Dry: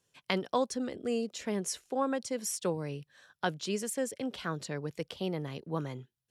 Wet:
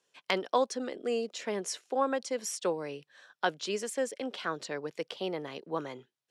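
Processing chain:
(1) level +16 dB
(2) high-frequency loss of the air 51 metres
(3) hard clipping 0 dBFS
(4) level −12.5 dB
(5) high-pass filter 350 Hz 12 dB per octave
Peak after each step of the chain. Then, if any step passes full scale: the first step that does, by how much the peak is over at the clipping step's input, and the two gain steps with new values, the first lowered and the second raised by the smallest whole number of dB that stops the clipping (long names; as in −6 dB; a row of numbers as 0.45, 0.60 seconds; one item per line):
+5.0, +4.5, 0.0, −12.5, −10.0 dBFS
step 1, 4.5 dB
step 1 +11 dB, step 4 −7.5 dB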